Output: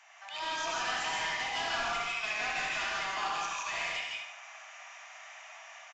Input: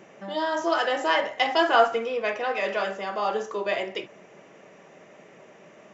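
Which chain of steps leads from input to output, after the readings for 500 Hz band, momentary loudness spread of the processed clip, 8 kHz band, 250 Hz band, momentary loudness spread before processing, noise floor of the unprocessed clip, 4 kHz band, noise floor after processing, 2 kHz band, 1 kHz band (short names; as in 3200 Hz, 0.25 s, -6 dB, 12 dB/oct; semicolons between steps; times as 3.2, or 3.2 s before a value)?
-18.5 dB, 16 LU, n/a, -18.0 dB, 9 LU, -52 dBFS, -3.0 dB, -51 dBFS, -4.0 dB, -9.0 dB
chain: rattling part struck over -38 dBFS, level -17 dBFS; steep high-pass 670 Hz 96 dB/oct; tilt shelf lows -5 dB, about 1300 Hz; limiter -20 dBFS, peak gain reduction 11 dB; AGC gain up to 5.5 dB; soft clip -31 dBFS, distortion -6 dB; on a send: feedback echo 73 ms, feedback 40%, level -6.5 dB; on the sum: non-linear reverb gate 0.19 s rising, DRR -1.5 dB; downsampling 16000 Hz; gain -4.5 dB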